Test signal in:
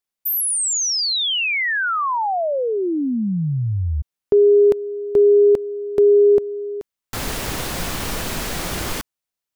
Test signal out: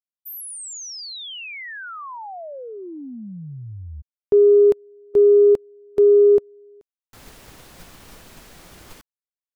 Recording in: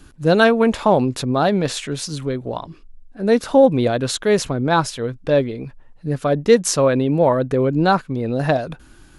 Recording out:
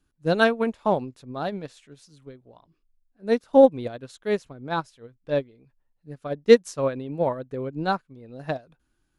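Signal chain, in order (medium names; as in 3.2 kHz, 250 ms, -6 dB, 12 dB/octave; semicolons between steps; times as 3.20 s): upward expansion 2.5:1, over -25 dBFS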